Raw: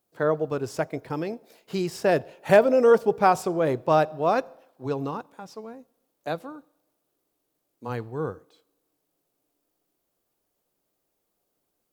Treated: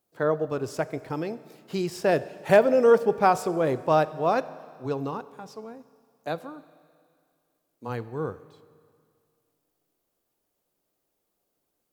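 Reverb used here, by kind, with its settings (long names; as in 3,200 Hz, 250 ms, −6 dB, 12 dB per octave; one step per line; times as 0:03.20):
four-comb reverb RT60 2.2 s, combs from 30 ms, DRR 16.5 dB
level −1 dB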